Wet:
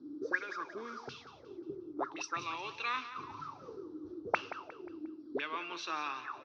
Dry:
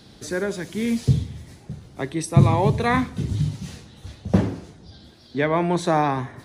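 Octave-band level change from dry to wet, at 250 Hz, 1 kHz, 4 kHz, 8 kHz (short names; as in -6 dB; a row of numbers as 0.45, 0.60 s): -21.5, -12.5, -8.0, -14.5 dB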